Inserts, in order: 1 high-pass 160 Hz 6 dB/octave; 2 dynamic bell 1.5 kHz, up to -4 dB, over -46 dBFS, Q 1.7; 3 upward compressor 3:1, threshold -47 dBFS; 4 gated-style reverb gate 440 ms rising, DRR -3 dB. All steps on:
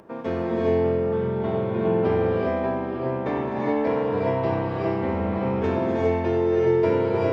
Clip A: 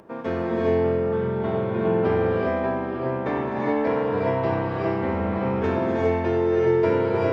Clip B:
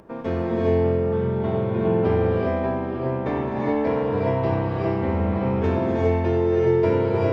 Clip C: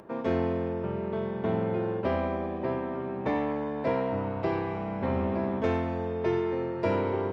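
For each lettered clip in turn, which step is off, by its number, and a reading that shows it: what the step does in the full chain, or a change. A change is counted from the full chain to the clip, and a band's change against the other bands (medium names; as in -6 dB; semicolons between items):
2, 2 kHz band +2.5 dB; 1, 125 Hz band +4.5 dB; 4, momentary loudness spread change -2 LU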